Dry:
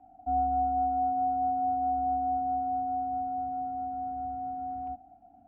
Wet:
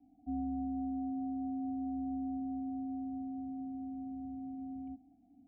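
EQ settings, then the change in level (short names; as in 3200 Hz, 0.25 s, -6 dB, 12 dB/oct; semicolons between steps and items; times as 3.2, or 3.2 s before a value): vocal tract filter i; bell 850 Hz +3.5 dB 0.28 oct; +5.0 dB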